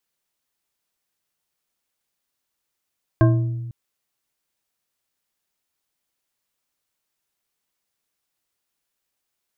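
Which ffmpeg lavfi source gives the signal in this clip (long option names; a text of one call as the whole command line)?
ffmpeg -f lavfi -i "aevalsrc='0.282*pow(10,-3*t/1.5)*sin(2*PI*119*t)+0.178*pow(10,-3*t/0.738)*sin(2*PI*328.1*t)+0.112*pow(10,-3*t/0.46)*sin(2*PI*643.1*t)+0.0708*pow(10,-3*t/0.324)*sin(2*PI*1063*t)+0.0447*pow(10,-3*t/0.245)*sin(2*PI*1587.5*t)':duration=0.5:sample_rate=44100" out.wav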